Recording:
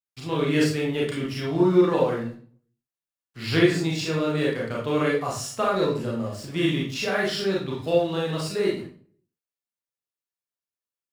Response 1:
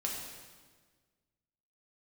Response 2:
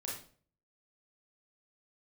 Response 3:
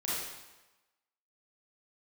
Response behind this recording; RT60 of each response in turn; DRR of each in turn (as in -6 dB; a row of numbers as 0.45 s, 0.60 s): 2; 1.5 s, 0.45 s, 1.1 s; -2.0 dB, -4.5 dB, -8.5 dB